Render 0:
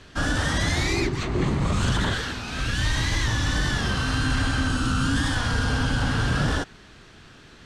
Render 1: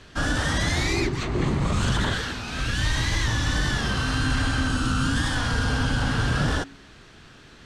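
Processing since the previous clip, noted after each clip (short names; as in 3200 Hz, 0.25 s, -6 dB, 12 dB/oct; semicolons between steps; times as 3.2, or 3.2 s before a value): de-hum 92.1 Hz, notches 4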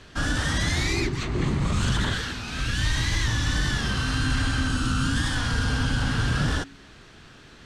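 dynamic EQ 640 Hz, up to -5 dB, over -41 dBFS, Q 0.78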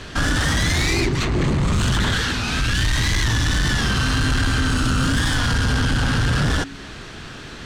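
in parallel at -1.5 dB: compressor, threshold -32 dBFS, peak gain reduction 12 dB; on the sum: soft clip -22.5 dBFS, distortion -12 dB; gain +7.5 dB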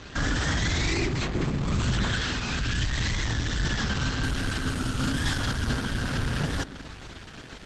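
added harmonics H 8 -23 dB, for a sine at -15 dBFS; spring tank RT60 3.1 s, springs 40 ms, chirp 40 ms, DRR 14.5 dB; gain -5.5 dB; Opus 12 kbps 48000 Hz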